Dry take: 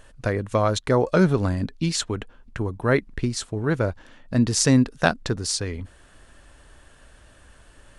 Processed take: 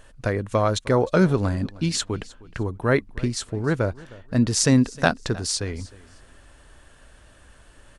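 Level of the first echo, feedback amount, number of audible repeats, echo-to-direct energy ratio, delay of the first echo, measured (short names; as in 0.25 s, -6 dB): -21.0 dB, 25%, 2, -20.5 dB, 0.31 s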